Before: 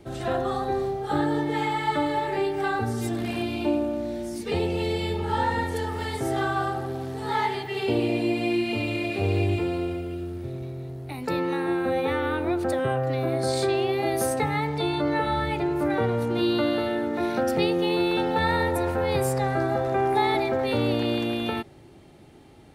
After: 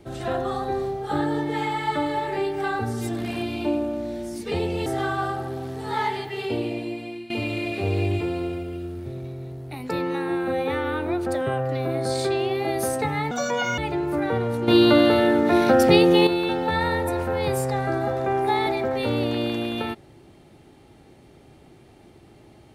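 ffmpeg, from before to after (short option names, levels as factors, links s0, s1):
-filter_complex "[0:a]asplit=7[s0][s1][s2][s3][s4][s5][s6];[s0]atrim=end=4.862[s7];[s1]atrim=start=6.238:end=8.68,asetpts=PTS-STARTPTS,afade=t=out:st=1.392:d=1.05:silence=0.149624[s8];[s2]atrim=start=8.68:end=14.694,asetpts=PTS-STARTPTS,afade=t=in:d=0.004:c=hsin:silence=0.149624[s9];[s3]atrim=start=14.69:end=15.46,asetpts=PTS-STARTPTS,asetrate=72324,aresample=44100,atrim=end_sample=20705,asetpts=PTS-STARTPTS[s10];[s4]atrim=start=15.456:end=16.362[s11];[s5]atrim=start=16.358:end=17.952,asetpts=PTS-STARTPTS,volume=2.51[s12];[s6]atrim=start=17.948[s13];[s8][s9]concat=n=2:v=0:a=1[s14];[s7][s14]acrossfade=d=0.004:c1=hsin:c2=hsin[s15];[s15][s10]acrossfade=d=0.004:c1=hsin:c2=hsin[s16];[s16][s11]acrossfade=d=0.004:c1=hsin:c2=hsin[s17];[s17][s12]acrossfade=d=0.004:c1=hsin:c2=hsin[s18];[s18][s13]acrossfade=d=0.004:c1=hsin:c2=hsin"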